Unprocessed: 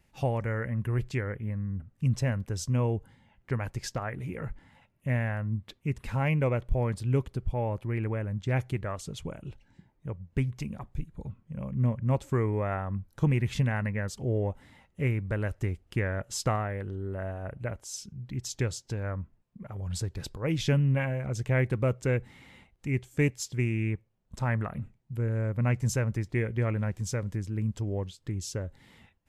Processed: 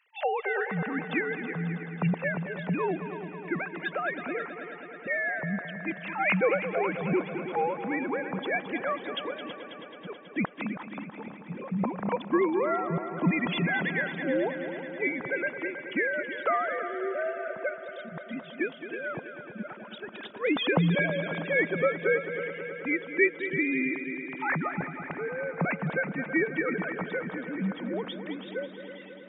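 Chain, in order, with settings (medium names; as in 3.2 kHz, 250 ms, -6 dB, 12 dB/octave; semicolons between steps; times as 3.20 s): formants replaced by sine waves; tilt EQ +3 dB/octave; multi-head delay 108 ms, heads second and third, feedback 69%, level -11.5 dB; trim +3 dB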